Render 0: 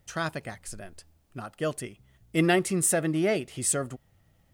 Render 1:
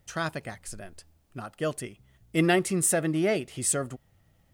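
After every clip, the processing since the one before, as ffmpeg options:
-af anull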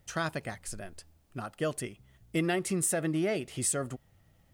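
-af "acompressor=threshold=-26dB:ratio=5"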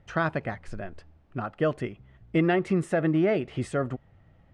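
-af "lowpass=2.1k,volume=6.5dB"

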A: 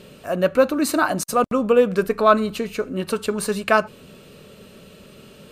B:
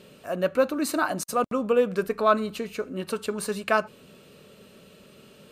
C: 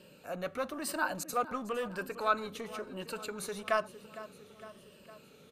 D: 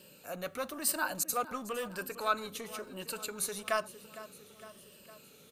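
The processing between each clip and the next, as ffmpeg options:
-af "lowshelf=f=77:g=-10,volume=-5.5dB"
-filter_complex "[0:a]afftfilt=real='re*pow(10,8/40*sin(2*PI*(1.3*log(max(b,1)*sr/1024/100)/log(2)-(-1)*(pts-256)/sr)))':imag='im*pow(10,8/40*sin(2*PI*(1.3*log(max(b,1)*sr/1024/100)/log(2)-(-1)*(pts-256)/sr)))':win_size=1024:overlap=0.75,aecho=1:1:458|916|1374|1832|2290:0.133|0.0787|0.0464|0.0274|0.0162,acrossover=split=590|2800[a][b][c];[a]asoftclip=type=tanh:threshold=-32.5dB[d];[d][b][c]amix=inputs=3:normalize=0,volume=-7dB"
-af "crystalizer=i=2.5:c=0,volume=-2.5dB"

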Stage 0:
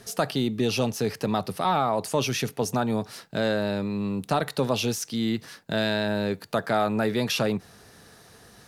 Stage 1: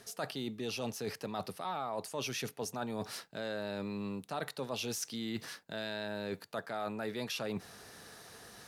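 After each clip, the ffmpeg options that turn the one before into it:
-af "lowshelf=f=260:g=-8,areverse,acompressor=threshold=-36dB:ratio=5,areverse"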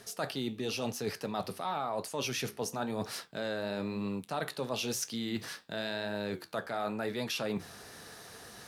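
-af "flanger=delay=9.3:depth=7.6:regen=-71:speed=0.97:shape=triangular,volume=7.5dB"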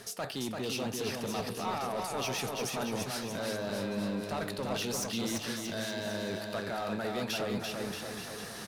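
-filter_complex "[0:a]asplit=2[a][b];[b]acompressor=threshold=-44dB:ratio=6,volume=1dB[c];[a][c]amix=inputs=2:normalize=0,asoftclip=type=hard:threshold=-28.5dB,aecho=1:1:340|629|874.6|1083|1261:0.631|0.398|0.251|0.158|0.1,volume=-2dB"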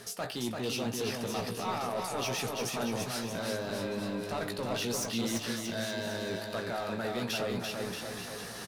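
-filter_complex "[0:a]asplit=2[a][b];[b]adelay=17,volume=-7.5dB[c];[a][c]amix=inputs=2:normalize=0"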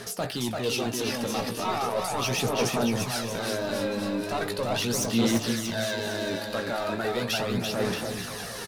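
-af "aphaser=in_gain=1:out_gain=1:delay=3.7:decay=0.42:speed=0.38:type=sinusoidal,volume=5dB"

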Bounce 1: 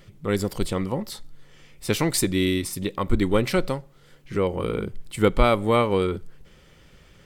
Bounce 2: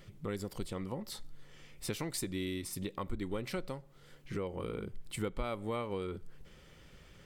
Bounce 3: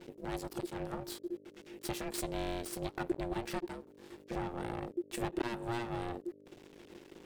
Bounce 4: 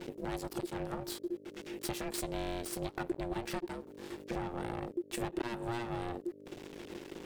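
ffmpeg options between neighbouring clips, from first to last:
-af "acompressor=threshold=-33dB:ratio=3,volume=-4.5dB"
-af "aeval=exprs='max(val(0),0)':c=same,aeval=exprs='val(0)+0.000891*(sin(2*PI*50*n/s)+sin(2*PI*2*50*n/s)/2+sin(2*PI*3*50*n/s)/3+sin(2*PI*4*50*n/s)/4+sin(2*PI*5*50*n/s)/5)':c=same,aeval=exprs='val(0)*sin(2*PI*350*n/s)':c=same,volume=6.5dB"
-af "acompressor=threshold=-47dB:ratio=2,volume=8dB"

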